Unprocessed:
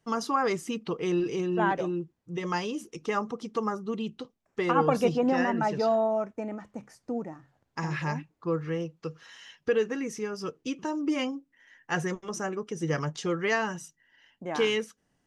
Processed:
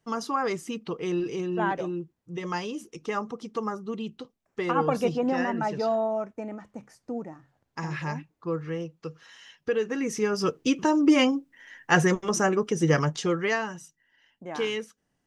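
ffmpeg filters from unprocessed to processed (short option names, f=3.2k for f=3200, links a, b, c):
-af "volume=9dB,afade=t=in:st=9.82:d=0.56:silence=0.316228,afade=t=out:st=12.62:d=1.07:silence=0.251189"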